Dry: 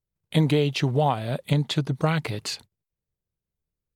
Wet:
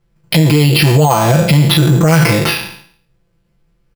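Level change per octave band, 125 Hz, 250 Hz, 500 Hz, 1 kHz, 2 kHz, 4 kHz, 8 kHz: +14.5, +13.5, +11.5, +12.5, +16.5, +14.5, +18.5 decibels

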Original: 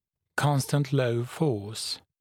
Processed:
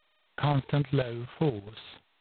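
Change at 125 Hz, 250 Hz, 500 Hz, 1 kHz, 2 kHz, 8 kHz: −2.5 dB, −2.5 dB, −3.5 dB, −3.0 dB, −6.5 dB, below −40 dB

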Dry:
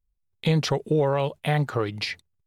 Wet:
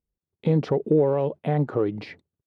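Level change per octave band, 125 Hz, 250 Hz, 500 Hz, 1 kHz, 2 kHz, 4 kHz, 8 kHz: −0.5 dB, +3.0 dB, +2.5 dB, −3.0 dB, −10.0 dB, below −15 dB, below −15 dB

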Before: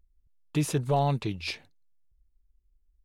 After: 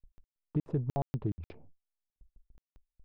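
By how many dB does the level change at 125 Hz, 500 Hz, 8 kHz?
−5.0 dB, −10.0 dB, below −25 dB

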